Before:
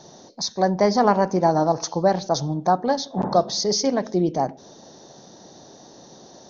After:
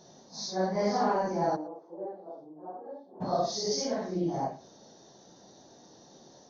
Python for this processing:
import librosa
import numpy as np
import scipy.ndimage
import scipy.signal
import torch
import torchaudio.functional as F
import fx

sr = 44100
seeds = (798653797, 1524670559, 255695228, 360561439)

y = fx.phase_scramble(x, sr, seeds[0], window_ms=200)
y = fx.ladder_bandpass(y, sr, hz=440.0, resonance_pct=45, at=(1.55, 3.2), fade=0.02)
y = y + 10.0 ** (-21.5 / 20.0) * np.pad(y, (int(115 * sr / 1000.0), 0))[:len(y)]
y = y * librosa.db_to_amplitude(-9.0)